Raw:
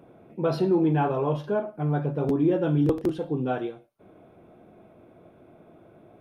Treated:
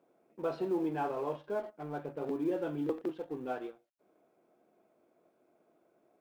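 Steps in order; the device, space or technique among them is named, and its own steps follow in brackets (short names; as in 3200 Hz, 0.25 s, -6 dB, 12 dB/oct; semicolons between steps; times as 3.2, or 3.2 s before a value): HPF 63 Hz 12 dB/oct; phone line with mismatched companding (BPF 300–3200 Hz; G.711 law mismatch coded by A); gain -7.5 dB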